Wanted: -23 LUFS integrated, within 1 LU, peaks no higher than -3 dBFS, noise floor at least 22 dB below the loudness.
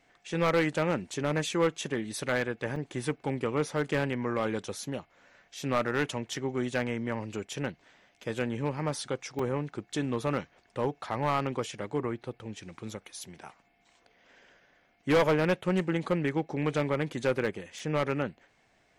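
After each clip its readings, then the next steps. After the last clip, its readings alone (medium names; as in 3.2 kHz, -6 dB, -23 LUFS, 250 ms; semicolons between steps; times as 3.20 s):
clipped samples 0.8%; clipping level -19.5 dBFS; dropouts 3; longest dropout 3.3 ms; loudness -31.0 LUFS; peak level -19.5 dBFS; loudness target -23.0 LUFS
-> clip repair -19.5 dBFS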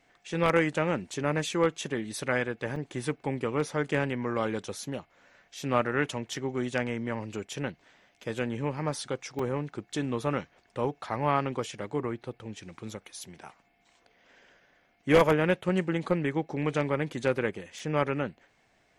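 clipped samples 0.0%; dropouts 3; longest dropout 3.3 ms
-> interpolate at 2.76/9.39/17.79 s, 3.3 ms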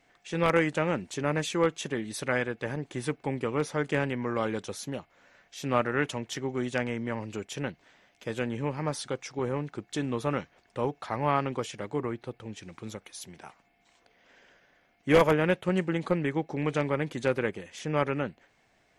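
dropouts 0; loudness -30.0 LUFS; peak level -10.5 dBFS; loudness target -23.0 LUFS
-> trim +7 dB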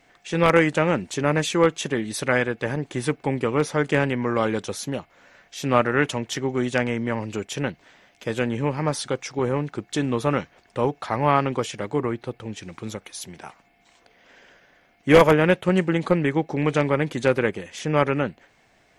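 loudness -23.0 LUFS; peak level -3.5 dBFS; noise floor -60 dBFS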